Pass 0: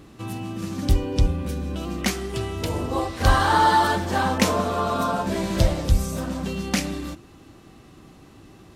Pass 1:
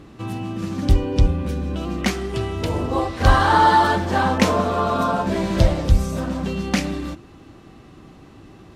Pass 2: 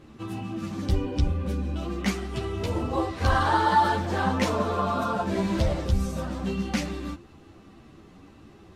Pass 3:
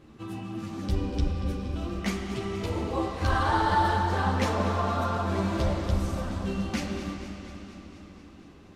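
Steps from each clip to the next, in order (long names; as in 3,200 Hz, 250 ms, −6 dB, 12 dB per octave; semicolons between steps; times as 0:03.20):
low-pass filter 3,700 Hz 6 dB per octave; level +3.5 dB
in parallel at −1.5 dB: brickwall limiter −12.5 dBFS, peak gain reduction 11 dB; on the sum: string-ensemble chorus; level −7.5 dB
convolution reverb RT60 3.8 s, pre-delay 35 ms, DRR 4.5 dB; feedback echo with a swinging delay time 237 ms, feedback 70%, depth 80 cents, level −13.5 dB; level −3.5 dB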